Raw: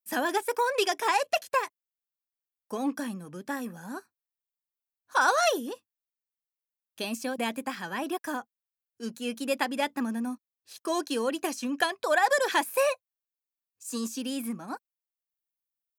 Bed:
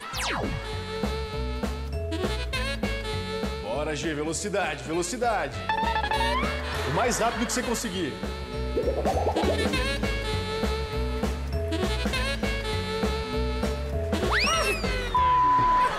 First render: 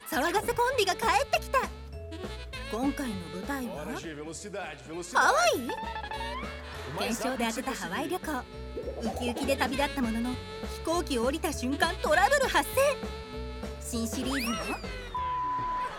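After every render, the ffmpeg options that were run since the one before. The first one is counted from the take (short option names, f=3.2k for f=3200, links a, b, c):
-filter_complex "[1:a]volume=-10.5dB[a];[0:a][a]amix=inputs=2:normalize=0"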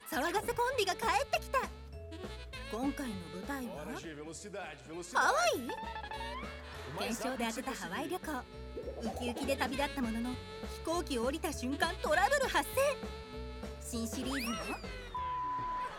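-af "volume=-6dB"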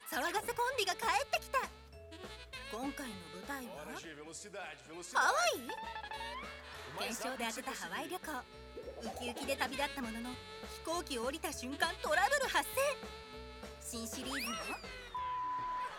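-af "lowshelf=f=480:g=-9"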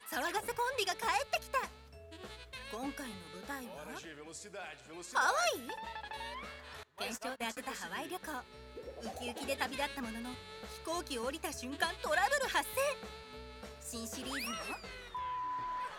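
-filter_complex "[0:a]asettb=1/sr,asplit=3[a][b][c];[a]atrim=end=6.834[d];[b]atrim=start=6.83:end=7.57,asetpts=PTS-STARTPTS,afade=t=in:d=0.004:c=qsin,afade=t=out:st=0.736:d=0.004:c=qsin,agate=range=-24dB:threshold=-42dB:ratio=16:release=100:detection=peak[e];[c]atrim=start=7.566[f];[d][e]acrossfade=d=0.004:c1=hsin:c2=qsin[g];[g][f]acrossfade=d=0.004:c1=qsin:c2=hsin"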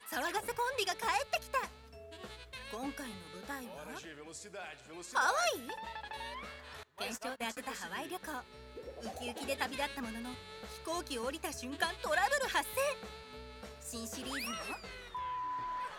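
-filter_complex "[0:a]asettb=1/sr,asplit=3[a][b][c];[a]atrim=end=1.834[d];[b]atrim=start=1.83:end=2.25,asetpts=PTS-STARTPTS,afade=t=in:d=0.004:c=qsin,afade=t=out:st=0.416:d=0.004:c=qsin,aecho=1:1:4.4:0.65,atrim=end_sample=18522[e];[c]atrim=start=2.246[f];[d][e]acrossfade=d=0.004:c1=hsin:c2=qsin[g];[g][f]acrossfade=d=0.004:c1=qsin:c2=hsin"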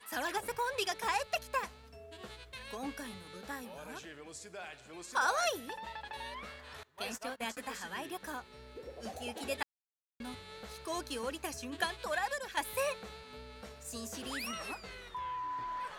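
-filter_complex "[0:a]asplit=4[a][b][c][d];[a]atrim=end=9.63,asetpts=PTS-STARTPTS,afade=t=out:st=9.626:d=0.004:c=hsin[e];[b]atrim=start=9.63:end=10.2,asetpts=PTS-STARTPTS,volume=0[f];[c]atrim=start=10.2:end=12.57,asetpts=PTS-STARTPTS,afade=t=in:d=0.004:c=hsin,afade=t=out:st=1.71:d=0.66:silence=0.298538[g];[d]atrim=start=12.57,asetpts=PTS-STARTPTS,afade=t=in:d=0.004:c=hsin:silence=0.298538[h];[e][f][g][h]concat=n=4:v=0:a=1"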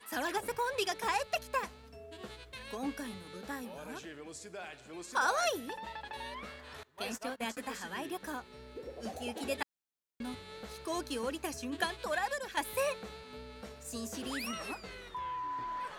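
-af "equalizer=f=280:t=o:w=1.6:g=4.5"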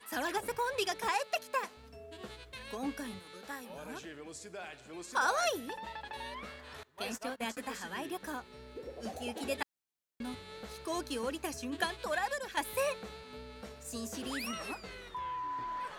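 -filter_complex "[0:a]asettb=1/sr,asplit=3[a][b][c];[a]atrim=end=1.094[d];[b]atrim=start=1.09:end=1.77,asetpts=PTS-STARTPTS,afade=t=in:d=0.004:c=qsin,afade=t=out:st=0.676:d=0.004:c=qsin,highpass=260[e];[c]atrim=start=1.766[f];[d][e]acrossfade=d=0.004:c1=hsin:c2=qsin[g];[g][f]acrossfade=d=0.004:c1=qsin:c2=hsin,asettb=1/sr,asplit=3[h][i][j];[h]atrim=end=3.194[k];[i]atrim=start=3.19:end=3.7,asetpts=PTS-STARTPTS,afade=t=in:d=0.004:c=qsin,afade=t=out:st=0.506:d=0.004:c=qsin,lowshelf=f=320:g=-11.5[l];[j]atrim=start=3.696[m];[k][l]acrossfade=d=0.004:c1=hsin:c2=qsin[n];[n][m]acrossfade=d=0.004:c1=qsin:c2=hsin"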